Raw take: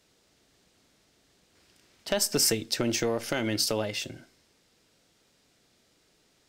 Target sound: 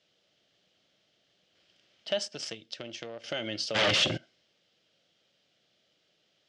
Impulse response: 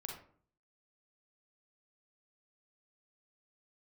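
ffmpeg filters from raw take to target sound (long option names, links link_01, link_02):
-filter_complex "[0:a]asettb=1/sr,asplit=3[link_01][link_02][link_03];[link_01]atrim=end=2.284[link_04];[link_02]atrim=start=2.28:end=3.24,asetpts=PTS-STARTPTS,afade=type=in:duration=0.004:curve=qsin,afade=type=out:start_time=0.956:duration=0.004:curve=qsin,aeval=exprs='0.299*(cos(1*acos(clip(val(0)/0.299,-1,1)))-cos(1*PI/2))+0.0668*(cos(3*acos(clip(val(0)/0.299,-1,1)))-cos(3*PI/2))':channel_layout=same[link_05];[link_03]atrim=start=3.236[link_06];[link_04][link_05]acrossfade=duration=0.004:curve1=hsin:curve2=qsin[link_07];[link_07][link_06]acrossfade=duration=0.004:curve1=qsin:curve2=hsin,asplit=3[link_08][link_09][link_10];[link_08]afade=type=out:start_time=3.74:duration=0.02[link_11];[link_09]aeval=exprs='0.15*sin(PI/2*7.94*val(0)/0.15)':channel_layout=same,afade=type=in:start_time=3.74:duration=0.02,afade=type=out:start_time=4.16:duration=0.02[link_12];[link_10]afade=type=in:start_time=4.16:duration=0.02[link_13];[link_11][link_12][link_13]amix=inputs=3:normalize=0,highpass=130,equalizer=frequency=260:width_type=q:width=4:gain=-7,equalizer=frequency=410:width_type=q:width=4:gain=-4,equalizer=frequency=590:width_type=q:width=4:gain=6,equalizer=frequency=970:width_type=q:width=4:gain=-7,equalizer=frequency=3100:width_type=q:width=4:gain=10,lowpass=frequency=5900:width=0.5412,lowpass=frequency=5900:width=1.3066,volume=-6dB"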